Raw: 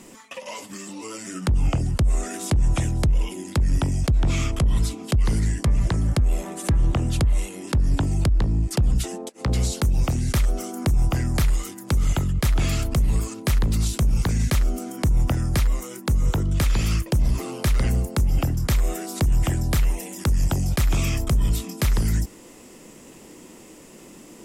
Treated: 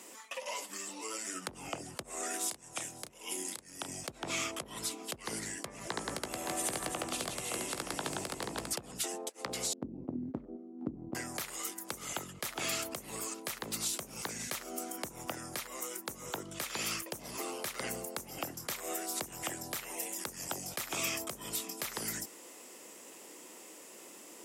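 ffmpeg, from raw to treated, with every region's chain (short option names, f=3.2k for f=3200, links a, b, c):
-filter_complex "[0:a]asettb=1/sr,asplit=3[a][b][c];[a]atrim=end=2.484[d];[b]atrim=start=2.48:end=3.89,asetpts=PTS-STARTPTS,afade=t=in:d=0.004:c=qsin,afade=t=out:st=1.406:d=0.004:c=qsin,highshelf=f=3.6k:g=7,acompressor=threshold=-26dB:ratio=12:attack=3.2:release=140:knee=1:detection=peak,asplit=2[e][f];[f]adelay=32,volume=-9.5dB[g];[e][g]amix=inputs=2:normalize=0,atrim=end_sample=62181[h];[c]atrim=start=3.886[i];[d][h]acrossfade=d=0.004:c1=hsin:c2=qsin[j];[j][i]acrossfade=d=0.004:c1=qsin:c2=hsin,asettb=1/sr,asplit=3[k][l][m];[k]atrim=end=5.904[n];[l]atrim=start=5.9:end=8.73,asetpts=PTS-STARTPTS,afade=t=in:d=0.004:c=qsin,afade=t=out:st=2.826:d=0.004:c=qsin,asplit=2[o][p];[p]adelay=16,volume=-12dB[q];[o][q]amix=inputs=2:normalize=0,atrim=end_sample=124803,aecho=1:1:70|175|332.5|568.8|923.1:0.794|0.631|0.501|0.398|0.316,atrim=end_sample=124803[r];[m]atrim=start=8.726[s];[n][r]acrossfade=d=0.004:c1=hsin:c2=qsin[t];[t][s]acrossfade=d=0.004:c1=qsin:c2=hsin,asettb=1/sr,asplit=3[u][v][w];[u]atrim=end=9.734[x];[v]atrim=start=9.73:end=11.15,asetpts=PTS-STARTPTS,afade=t=in:d=0.004:c=qsin,afade=t=out:st=1.416:d=0.004:c=qsin,lowpass=f=270:t=q:w=3.2,agate=range=-8dB:threshold=-23dB:ratio=16:release=100:detection=peak[y];[w]atrim=start=11.146[z];[x][y]acrossfade=d=0.004:c1=hsin:c2=qsin[aa];[aa][z]acrossfade=d=0.004:c1=qsin:c2=hsin,highpass=450,highshelf=f=8.7k:g=6,alimiter=limit=-18dB:level=0:latency=1:release=231,volume=-4dB"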